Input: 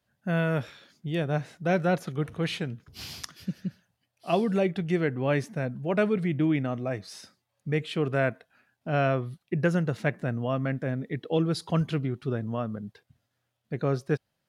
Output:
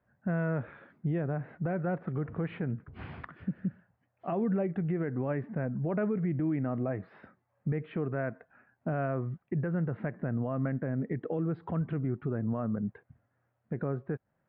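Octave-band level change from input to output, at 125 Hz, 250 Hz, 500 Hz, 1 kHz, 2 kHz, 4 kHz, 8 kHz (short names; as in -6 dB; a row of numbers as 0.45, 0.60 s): -3.0 dB, -3.0 dB, -6.5 dB, -7.0 dB, -9.5 dB, under -20 dB, under -30 dB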